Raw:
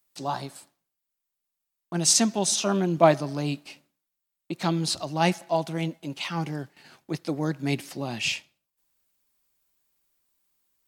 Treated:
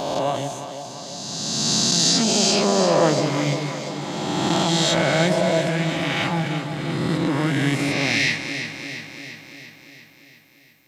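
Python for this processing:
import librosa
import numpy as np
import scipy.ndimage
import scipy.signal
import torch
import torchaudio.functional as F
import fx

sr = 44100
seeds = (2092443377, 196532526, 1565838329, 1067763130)

p1 = fx.spec_swells(x, sr, rise_s=2.25)
p2 = fx.over_compress(p1, sr, threshold_db=-23.0, ratio=-1.0)
p3 = p1 + (p2 * 10.0 ** (1.5 / 20.0))
p4 = fx.formant_shift(p3, sr, semitones=-4)
p5 = fx.echo_alternate(p4, sr, ms=172, hz=800.0, feedback_pct=78, wet_db=-6.5)
y = p5 * 10.0 ** (-5.0 / 20.0)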